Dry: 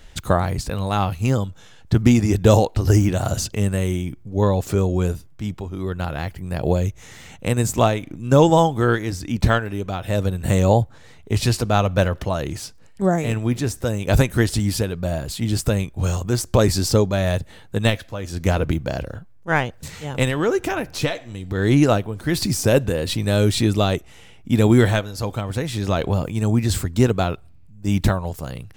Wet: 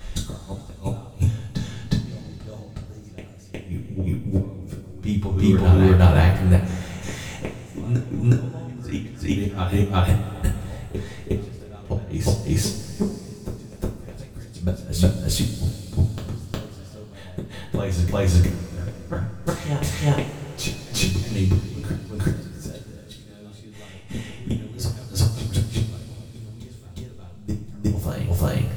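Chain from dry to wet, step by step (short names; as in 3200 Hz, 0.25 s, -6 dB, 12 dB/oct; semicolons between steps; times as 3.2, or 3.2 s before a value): low shelf 240 Hz +6 dB; flipped gate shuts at -12 dBFS, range -35 dB; reverse echo 0.361 s -5.5 dB; two-slope reverb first 0.32 s, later 3.3 s, from -18 dB, DRR -4.5 dB; gain +1 dB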